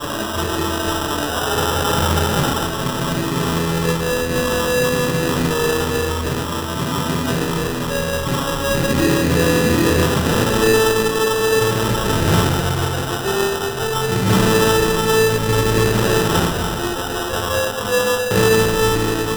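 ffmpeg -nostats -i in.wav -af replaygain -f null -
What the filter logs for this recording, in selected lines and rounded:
track_gain = -0.7 dB
track_peak = 0.491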